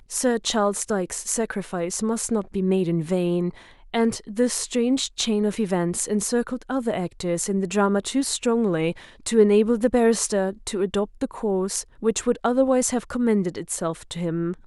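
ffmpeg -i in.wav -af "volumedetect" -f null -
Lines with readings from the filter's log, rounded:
mean_volume: -23.3 dB
max_volume: -5.7 dB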